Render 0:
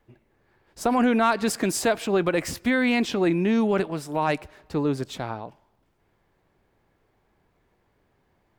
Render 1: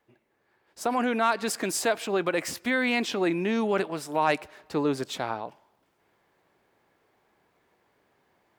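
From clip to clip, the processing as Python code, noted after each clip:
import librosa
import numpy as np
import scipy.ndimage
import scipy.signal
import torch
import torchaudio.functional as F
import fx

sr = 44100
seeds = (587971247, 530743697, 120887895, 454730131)

y = fx.highpass(x, sr, hz=400.0, slope=6)
y = fx.rider(y, sr, range_db=3, speed_s=2.0)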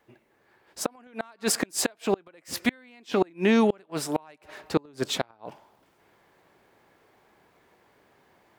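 y = fx.gate_flip(x, sr, shuts_db=-17.0, range_db=-33)
y = y * librosa.db_to_amplitude(6.5)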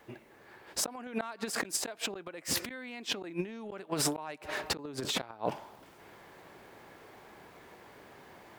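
y = fx.over_compress(x, sr, threshold_db=-35.0, ratio=-1.0)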